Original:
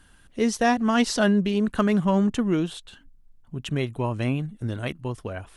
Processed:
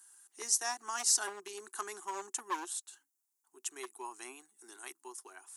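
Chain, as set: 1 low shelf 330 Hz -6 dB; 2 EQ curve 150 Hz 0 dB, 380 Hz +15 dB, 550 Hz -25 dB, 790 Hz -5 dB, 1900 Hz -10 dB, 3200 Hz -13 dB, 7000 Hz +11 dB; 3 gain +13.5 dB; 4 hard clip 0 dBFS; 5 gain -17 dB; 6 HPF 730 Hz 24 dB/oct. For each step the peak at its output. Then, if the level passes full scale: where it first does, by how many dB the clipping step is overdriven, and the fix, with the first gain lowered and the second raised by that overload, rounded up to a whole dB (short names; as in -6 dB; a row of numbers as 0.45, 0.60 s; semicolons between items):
-9.0, -5.5, +8.0, 0.0, -17.0, -16.0 dBFS; step 3, 8.0 dB; step 3 +5.5 dB, step 5 -9 dB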